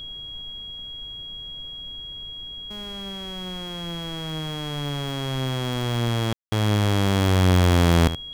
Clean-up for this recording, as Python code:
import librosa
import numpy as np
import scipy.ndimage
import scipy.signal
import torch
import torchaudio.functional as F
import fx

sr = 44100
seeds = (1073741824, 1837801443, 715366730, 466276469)

y = fx.notch(x, sr, hz=3300.0, q=30.0)
y = fx.fix_ambience(y, sr, seeds[0], print_start_s=0.51, print_end_s=1.01, start_s=6.33, end_s=6.52)
y = fx.noise_reduce(y, sr, print_start_s=0.51, print_end_s=1.01, reduce_db=30.0)
y = fx.fix_echo_inverse(y, sr, delay_ms=76, level_db=-12.5)